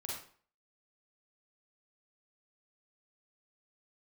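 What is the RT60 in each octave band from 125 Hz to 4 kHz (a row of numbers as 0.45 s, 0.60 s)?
0.40 s, 0.45 s, 0.45 s, 0.45 s, 0.45 s, 0.40 s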